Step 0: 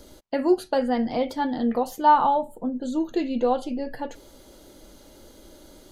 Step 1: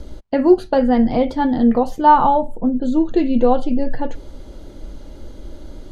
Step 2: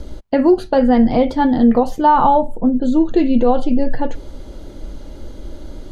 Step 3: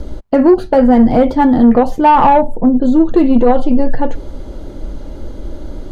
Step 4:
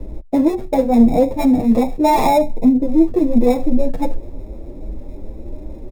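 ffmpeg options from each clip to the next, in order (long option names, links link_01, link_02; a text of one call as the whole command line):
ffmpeg -i in.wav -af "aemphasis=mode=reproduction:type=bsi,volume=5.5dB" out.wav
ffmpeg -i in.wav -af "alimiter=level_in=6dB:limit=-1dB:release=50:level=0:latency=1,volume=-3dB" out.wav
ffmpeg -i in.wav -filter_complex "[0:a]acrossover=split=1700[link_01][link_02];[link_01]acontrast=50[link_03];[link_02]asoftclip=type=tanh:threshold=-33.5dB[link_04];[link_03][link_04]amix=inputs=2:normalize=0" out.wav
ffmpeg -i in.wav -filter_complex "[0:a]acrossover=split=150|1000[link_01][link_02][link_03];[link_03]acrusher=samples=29:mix=1:aa=0.000001[link_04];[link_01][link_02][link_04]amix=inputs=3:normalize=0,asplit=2[link_05][link_06];[link_06]adelay=7.8,afreqshift=2.5[link_07];[link_05][link_07]amix=inputs=2:normalize=1,volume=-1dB" out.wav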